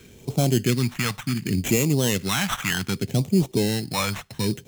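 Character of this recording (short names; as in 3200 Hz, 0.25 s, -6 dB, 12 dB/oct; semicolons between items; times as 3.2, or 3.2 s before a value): aliases and images of a low sample rate 4700 Hz, jitter 0%; phasing stages 2, 0.67 Hz, lowest notch 360–1600 Hz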